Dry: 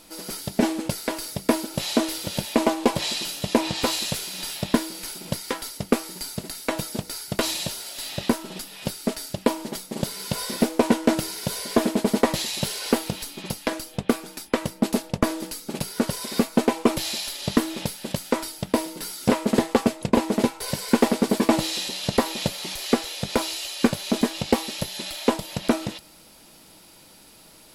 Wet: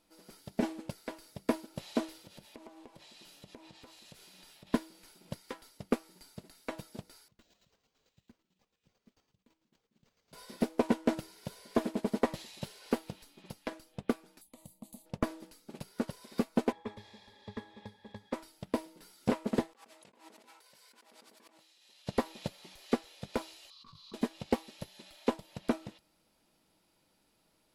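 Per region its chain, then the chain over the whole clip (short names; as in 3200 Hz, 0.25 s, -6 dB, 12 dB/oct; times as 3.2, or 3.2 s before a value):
2.22–4.67 compressor 20:1, threshold -27 dBFS + tremolo triangle 1.1 Hz, depth 30%
7.28–10.33 passive tone stack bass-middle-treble 6-0-2 + chopper 9 Hz, depth 60%, duty 30% + careless resampling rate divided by 4×, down none, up hold
14.41–15.06 EQ curve 460 Hz 0 dB, 980 Hz -10 dB, 2600 Hz -11 dB, 5200 Hz +13 dB + compressor 4:1, threshold -22 dBFS + fixed phaser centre 1500 Hz, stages 6
16.72–18.33 octave resonator G#, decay 0.13 s + spectral compressor 2:1
19.73–22.07 HPF 1300 Hz 6 dB/oct + negative-ratio compressor -40 dBFS
23.7–24.14 EQ curve 150 Hz 0 dB, 230 Hz -16 dB, 770 Hz -28 dB, 1100 Hz +8 dB, 1600 Hz -20 dB, 2700 Hz -11 dB, 4200 Hz +5 dB, 8100 Hz -18 dB + negative-ratio compressor -33 dBFS
whole clip: high shelf 3700 Hz -7 dB; upward expander 1.5:1, over -36 dBFS; gain -8.5 dB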